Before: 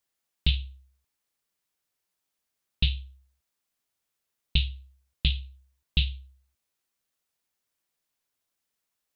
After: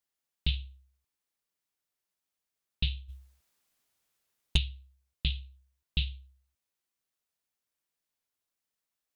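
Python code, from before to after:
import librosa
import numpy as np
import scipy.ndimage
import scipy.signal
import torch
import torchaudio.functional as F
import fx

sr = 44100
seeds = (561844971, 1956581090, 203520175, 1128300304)

y = fx.fold_sine(x, sr, drive_db=fx.line((3.08, 10.0), (4.56, 3.0)), ceiling_db=-9.0, at=(3.08, 4.56), fade=0.02)
y = F.gain(torch.from_numpy(y), -5.5).numpy()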